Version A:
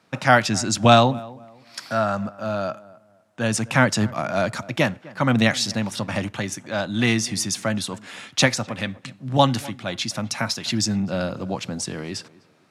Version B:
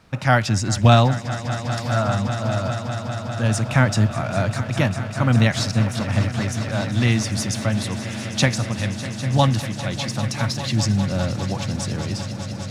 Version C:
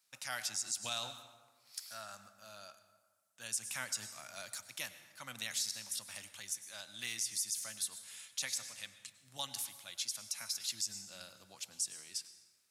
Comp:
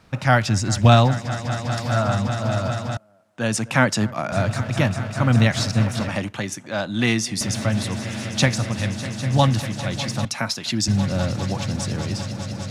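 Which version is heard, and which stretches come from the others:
B
0:02.97–0:04.32: punch in from A
0:06.09–0:07.41: punch in from A
0:10.25–0:10.88: punch in from A
not used: C

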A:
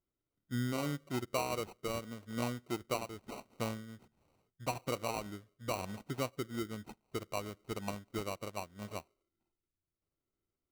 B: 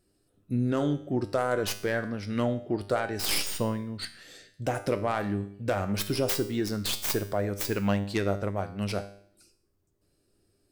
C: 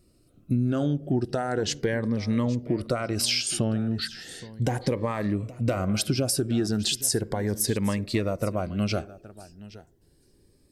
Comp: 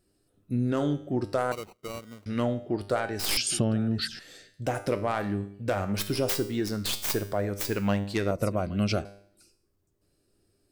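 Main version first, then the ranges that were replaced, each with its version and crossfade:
B
0:01.52–0:02.26: punch in from A
0:03.37–0:04.19: punch in from C
0:08.31–0:09.05: punch in from C

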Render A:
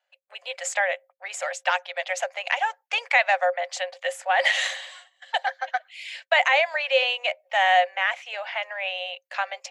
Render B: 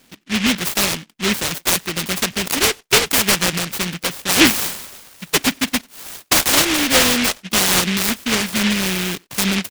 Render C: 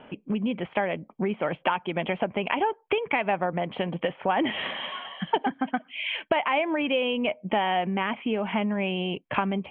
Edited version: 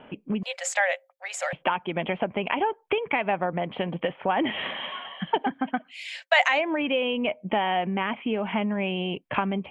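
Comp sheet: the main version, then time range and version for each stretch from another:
C
0:00.43–0:01.53: punch in from A
0:05.90–0:06.54: punch in from A, crossfade 0.16 s
not used: B

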